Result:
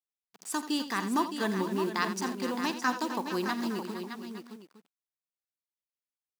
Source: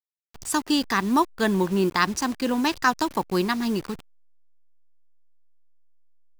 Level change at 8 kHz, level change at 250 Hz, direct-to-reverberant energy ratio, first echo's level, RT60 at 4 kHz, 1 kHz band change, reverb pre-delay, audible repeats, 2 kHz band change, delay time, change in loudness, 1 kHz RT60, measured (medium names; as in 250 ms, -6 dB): -7.5 dB, -7.5 dB, no reverb, -17.0 dB, no reverb, -7.0 dB, no reverb, 6, -7.0 dB, 47 ms, -8.0 dB, no reverb